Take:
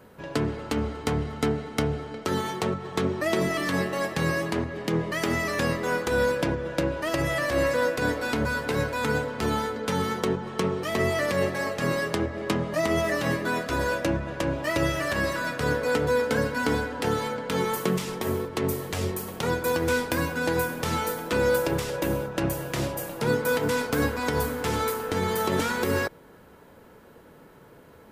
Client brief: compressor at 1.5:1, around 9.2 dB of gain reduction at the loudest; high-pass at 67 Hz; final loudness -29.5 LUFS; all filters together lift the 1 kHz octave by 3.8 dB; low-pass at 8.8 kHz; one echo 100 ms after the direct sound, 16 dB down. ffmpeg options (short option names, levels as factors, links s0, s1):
-af "highpass=67,lowpass=8800,equalizer=f=1000:t=o:g=4.5,acompressor=threshold=0.00501:ratio=1.5,aecho=1:1:100:0.158,volume=1.78"